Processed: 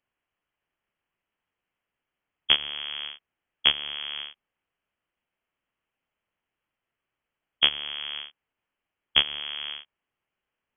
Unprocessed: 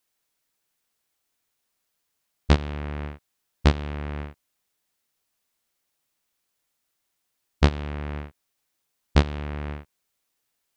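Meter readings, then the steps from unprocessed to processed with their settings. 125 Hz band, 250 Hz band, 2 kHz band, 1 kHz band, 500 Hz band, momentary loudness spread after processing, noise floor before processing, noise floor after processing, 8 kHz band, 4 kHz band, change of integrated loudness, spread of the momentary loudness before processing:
under -25 dB, -20.5 dB, +3.5 dB, -7.0 dB, -14.0 dB, 15 LU, -78 dBFS, under -85 dBFS, n/a, +15.5 dB, +1.5 dB, 15 LU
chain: low shelf 110 Hz -6.5 dB; inverted band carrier 3300 Hz; gain -1 dB

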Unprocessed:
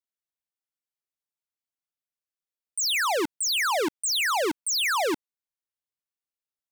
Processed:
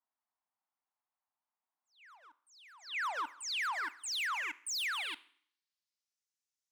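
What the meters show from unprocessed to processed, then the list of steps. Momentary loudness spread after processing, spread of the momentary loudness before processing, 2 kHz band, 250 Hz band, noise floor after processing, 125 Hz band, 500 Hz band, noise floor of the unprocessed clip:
7 LU, 5 LU, -8.5 dB, -29.0 dB, under -85 dBFS, n/a, -27.0 dB, under -85 dBFS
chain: low shelf 170 Hz +7 dB; band-pass sweep 730 Hz -> 6200 Hz, 2.37–6.28; soft clip -39.5 dBFS, distortion -5 dB; ten-band EQ 125 Hz -11 dB, 250 Hz +11 dB, 500 Hz -10 dB, 1000 Hz +11 dB, 2000 Hz +6 dB; auto swell 0.379 s; compressor, threshold -42 dBFS, peak gain reduction 11.5 dB; reverse echo 0.938 s -23 dB; Schroeder reverb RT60 0.6 s, combs from 32 ms, DRR 18.5 dB; gain +7 dB

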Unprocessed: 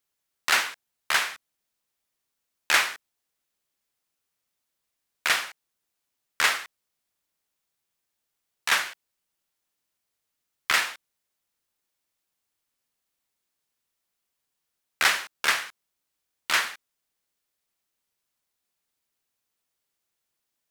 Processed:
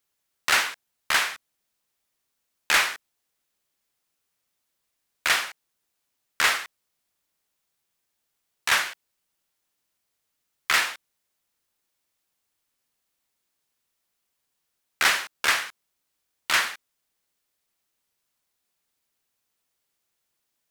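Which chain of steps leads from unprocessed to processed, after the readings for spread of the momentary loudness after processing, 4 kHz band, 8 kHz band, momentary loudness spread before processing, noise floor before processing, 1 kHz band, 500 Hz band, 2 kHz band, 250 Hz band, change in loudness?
16 LU, +1.5 dB, +1.5 dB, 13 LU, -82 dBFS, +1.5 dB, +1.5 dB, +1.5 dB, +2.0 dB, +1.0 dB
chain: soft clip -14.5 dBFS, distortion -15 dB; gain +3 dB

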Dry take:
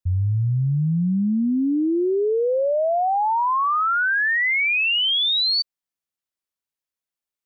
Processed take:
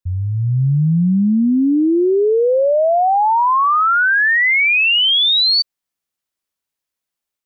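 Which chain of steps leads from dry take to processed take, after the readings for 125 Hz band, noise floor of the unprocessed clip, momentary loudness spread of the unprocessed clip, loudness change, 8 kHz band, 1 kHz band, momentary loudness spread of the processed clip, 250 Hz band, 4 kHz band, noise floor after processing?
+4.5 dB, under -85 dBFS, 5 LU, +6.5 dB, n/a, +6.5 dB, 5 LU, +6.5 dB, +6.5 dB, -84 dBFS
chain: AGC gain up to 6.5 dB

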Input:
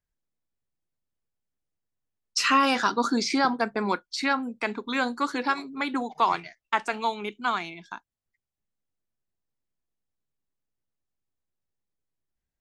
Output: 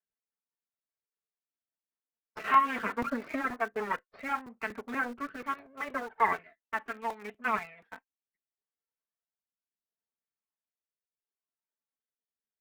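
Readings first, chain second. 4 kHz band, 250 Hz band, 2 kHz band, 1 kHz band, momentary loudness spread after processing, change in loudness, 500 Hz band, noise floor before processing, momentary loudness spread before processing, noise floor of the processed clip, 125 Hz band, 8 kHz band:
-19.0 dB, -10.5 dB, -5.5 dB, -4.5 dB, 13 LU, -6.0 dB, -7.0 dB, under -85 dBFS, 10 LU, under -85 dBFS, -8.5 dB, under -15 dB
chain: minimum comb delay 4.5 ms; LPF 2000 Hz 24 dB/oct; phaser 0.2 Hz, delay 4.8 ms, feedback 40%; HPF 810 Hz 6 dB/oct; rotary speaker horn 5 Hz, later 0.7 Hz, at 3.34; in parallel at -6 dB: sample gate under -39.5 dBFS; on the sum: crackling interface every 0.24 s, samples 128, repeat, from 0.38; gain -1.5 dB

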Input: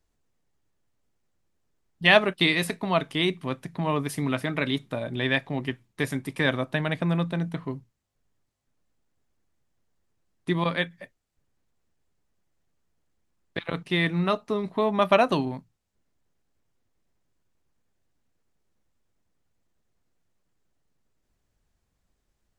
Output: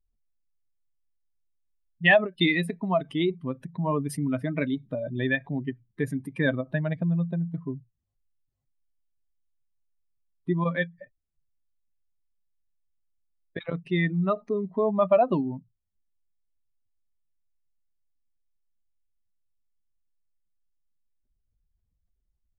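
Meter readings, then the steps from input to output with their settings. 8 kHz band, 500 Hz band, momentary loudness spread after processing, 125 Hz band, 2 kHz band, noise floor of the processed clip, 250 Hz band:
n/a, 0.0 dB, 13 LU, +0.5 dB, -1.5 dB, -77 dBFS, +0.5 dB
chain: spectral contrast raised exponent 2; ending taper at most 390 dB/s

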